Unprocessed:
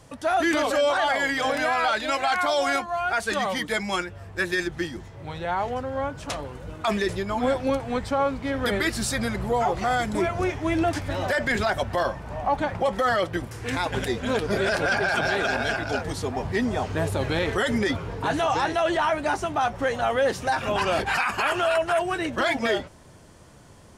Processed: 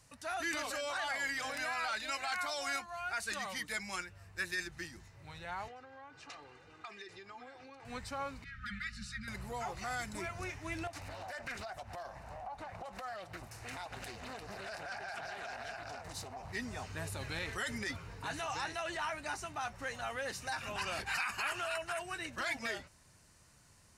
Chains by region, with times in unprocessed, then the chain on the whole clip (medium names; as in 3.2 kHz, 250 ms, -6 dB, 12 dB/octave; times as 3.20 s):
5.68–7.85 s: compression 10:1, threshold -30 dBFS + band-pass 200–4300 Hz + comb 2.5 ms, depth 54%
8.44–9.28 s: brick-wall FIR band-stop 230–1200 Hz + tape spacing loss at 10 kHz 23 dB + comb 4.8 ms, depth 43%
10.87–16.53 s: peaking EQ 720 Hz +13.5 dB 0.51 oct + compression 4:1, threshold -26 dBFS + loudspeaker Doppler distortion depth 0.58 ms
whole clip: amplifier tone stack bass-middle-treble 5-5-5; band-stop 3.3 kHz, Q 6.3